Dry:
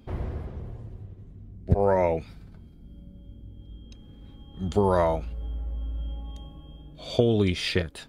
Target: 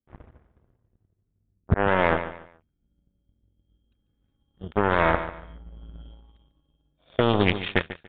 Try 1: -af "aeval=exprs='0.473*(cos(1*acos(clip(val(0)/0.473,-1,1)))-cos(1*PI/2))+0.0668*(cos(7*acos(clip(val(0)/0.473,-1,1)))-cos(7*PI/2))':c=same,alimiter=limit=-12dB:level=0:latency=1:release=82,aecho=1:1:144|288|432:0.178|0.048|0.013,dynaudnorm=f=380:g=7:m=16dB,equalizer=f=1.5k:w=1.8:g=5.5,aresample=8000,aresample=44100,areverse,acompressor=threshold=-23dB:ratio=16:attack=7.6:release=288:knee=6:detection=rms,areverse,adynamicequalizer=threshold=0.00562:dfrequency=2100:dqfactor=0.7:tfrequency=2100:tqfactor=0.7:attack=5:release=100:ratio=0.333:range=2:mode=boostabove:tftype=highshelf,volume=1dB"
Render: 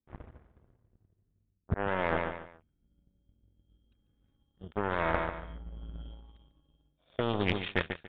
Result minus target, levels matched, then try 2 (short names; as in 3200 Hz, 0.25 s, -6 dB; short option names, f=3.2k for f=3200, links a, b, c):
compressor: peak gain reduction +10 dB
-af "aeval=exprs='0.473*(cos(1*acos(clip(val(0)/0.473,-1,1)))-cos(1*PI/2))+0.0668*(cos(7*acos(clip(val(0)/0.473,-1,1)))-cos(7*PI/2))':c=same,alimiter=limit=-12dB:level=0:latency=1:release=82,aecho=1:1:144|288|432:0.178|0.048|0.013,dynaudnorm=f=380:g=7:m=16dB,equalizer=f=1.5k:w=1.8:g=5.5,aresample=8000,aresample=44100,areverse,acompressor=threshold=-12.5dB:ratio=16:attack=7.6:release=288:knee=6:detection=rms,areverse,adynamicequalizer=threshold=0.00562:dfrequency=2100:dqfactor=0.7:tfrequency=2100:tqfactor=0.7:attack=5:release=100:ratio=0.333:range=2:mode=boostabove:tftype=highshelf,volume=1dB"